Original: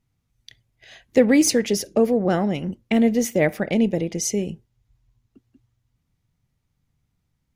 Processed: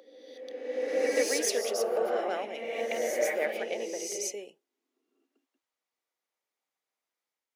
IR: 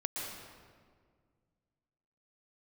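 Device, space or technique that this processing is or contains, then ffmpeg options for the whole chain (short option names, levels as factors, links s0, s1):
ghost voice: -filter_complex "[0:a]areverse[s0];[1:a]atrim=start_sample=2205[s1];[s0][s1]afir=irnorm=-1:irlink=0,areverse,highpass=f=440:w=0.5412,highpass=f=440:w=1.3066,volume=0.398"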